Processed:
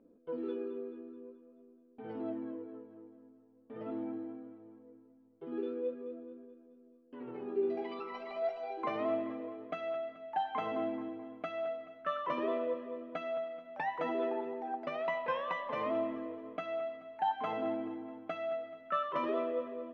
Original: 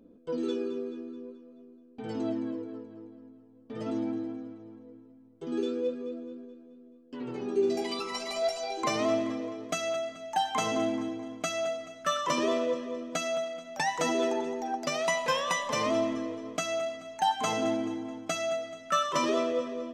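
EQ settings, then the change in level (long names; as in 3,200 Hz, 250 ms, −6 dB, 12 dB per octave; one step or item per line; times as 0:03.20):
high-frequency loss of the air 450 metres
bass and treble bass −9 dB, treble −12 dB
high-shelf EQ 7,700 Hz +4.5 dB
−3.5 dB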